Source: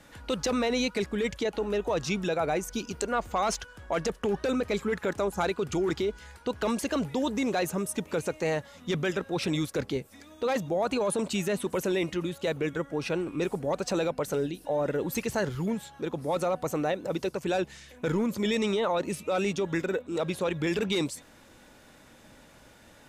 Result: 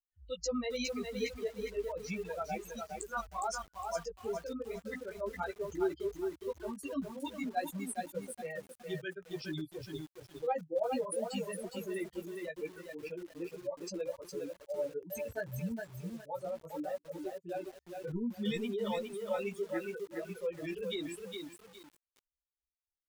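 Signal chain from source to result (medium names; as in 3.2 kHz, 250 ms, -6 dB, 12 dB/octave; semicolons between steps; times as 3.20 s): expander on every frequency bin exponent 3; chorus voices 6, 0.77 Hz, delay 14 ms, depth 3.9 ms; bit-crushed delay 411 ms, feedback 35%, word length 9-bit, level -4 dB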